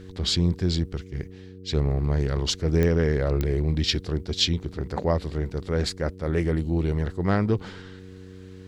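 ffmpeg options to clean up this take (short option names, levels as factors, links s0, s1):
-af "adeclick=t=4,bandreject=f=93.5:t=h:w=4,bandreject=f=187:t=h:w=4,bandreject=f=280.5:t=h:w=4,bandreject=f=374:t=h:w=4,bandreject=f=467.5:t=h:w=4"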